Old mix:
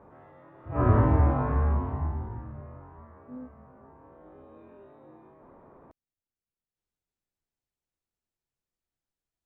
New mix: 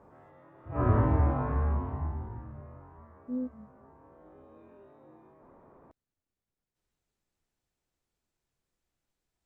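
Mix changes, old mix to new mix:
speech +8.5 dB
background −3.5 dB

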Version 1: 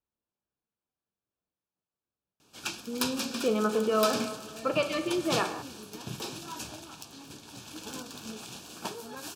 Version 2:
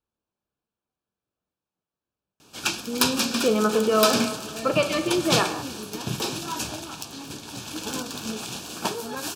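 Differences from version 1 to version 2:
speech +5.5 dB
background +9.5 dB

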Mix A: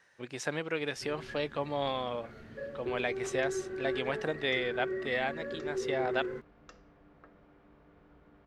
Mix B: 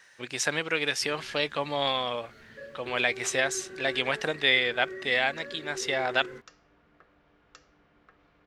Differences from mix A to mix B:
speech +7.0 dB
second sound: entry +1.95 s
master: add tilt shelving filter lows −6 dB, about 1,300 Hz

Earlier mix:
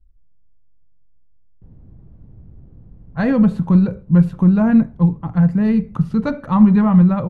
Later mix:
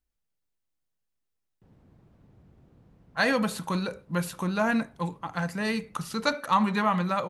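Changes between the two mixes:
speech: add bass and treble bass −9 dB, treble +5 dB
master: add spectral tilt +4.5 dB per octave

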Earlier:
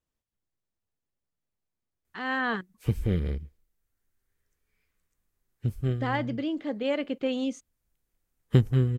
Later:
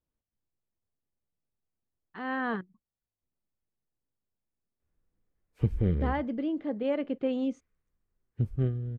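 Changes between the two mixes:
background: entry +2.75 s
master: add low-pass filter 1,000 Hz 6 dB per octave

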